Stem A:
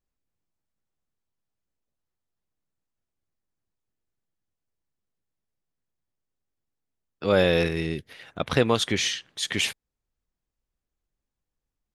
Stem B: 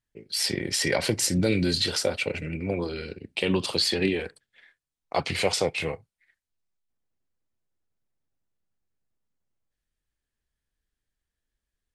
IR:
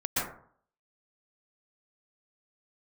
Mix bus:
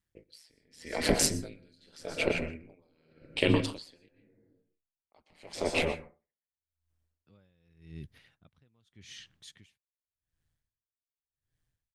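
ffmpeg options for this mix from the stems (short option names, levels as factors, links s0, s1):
-filter_complex "[0:a]asubboost=boost=5:cutoff=200,adelay=50,volume=0.224[s0];[1:a]aeval=exprs='val(0)*sin(2*PI*80*n/s)':c=same,volume=1.26,asplit=3[s1][s2][s3];[s1]atrim=end=4.09,asetpts=PTS-STARTPTS,afade=t=out:st=4.086:d=0.004:c=hsin[s4];[s2]atrim=start=4.09:end=4.98,asetpts=PTS-STARTPTS,volume=0[s5];[s3]atrim=start=4.98,asetpts=PTS-STARTPTS,afade=t=in:d=0.004:c=hsin[s6];[s4][s5][s6]concat=n=3:v=0:a=1,asplit=2[s7][s8];[s8]volume=0.211[s9];[2:a]atrim=start_sample=2205[s10];[s9][s10]afir=irnorm=-1:irlink=0[s11];[s0][s7][s11]amix=inputs=3:normalize=0,aeval=exprs='val(0)*pow(10,-40*(0.5-0.5*cos(2*PI*0.86*n/s))/20)':c=same"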